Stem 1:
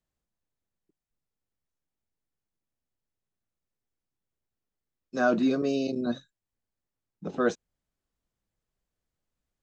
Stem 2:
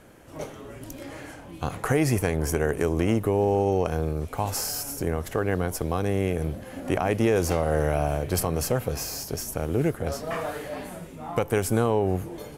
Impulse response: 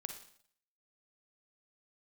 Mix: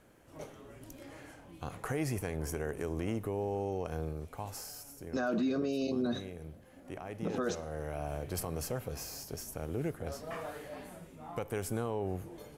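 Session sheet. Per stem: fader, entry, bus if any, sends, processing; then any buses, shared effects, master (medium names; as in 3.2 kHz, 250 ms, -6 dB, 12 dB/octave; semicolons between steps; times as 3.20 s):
+2.5 dB, 0.00 s, send -9 dB, peak limiter -18 dBFS, peak gain reduction 5.5 dB
-12.0 dB, 0.00 s, send -11.5 dB, auto duck -11 dB, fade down 1.10 s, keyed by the first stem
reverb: on, RT60 0.60 s, pre-delay 39 ms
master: peak limiter -24.5 dBFS, peak gain reduction 11.5 dB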